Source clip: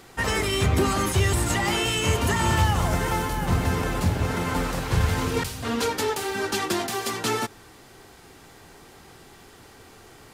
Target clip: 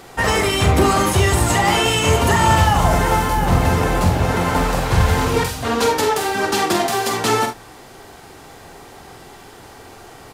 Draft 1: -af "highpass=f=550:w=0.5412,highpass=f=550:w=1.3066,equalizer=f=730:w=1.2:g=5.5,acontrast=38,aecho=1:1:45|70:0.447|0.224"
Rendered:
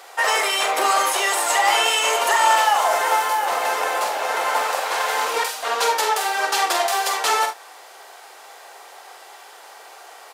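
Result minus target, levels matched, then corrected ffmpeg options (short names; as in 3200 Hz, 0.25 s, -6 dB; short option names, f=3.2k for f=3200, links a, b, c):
500 Hz band -3.0 dB
-af "equalizer=f=730:w=1.2:g=5.5,acontrast=38,aecho=1:1:45|70:0.447|0.224"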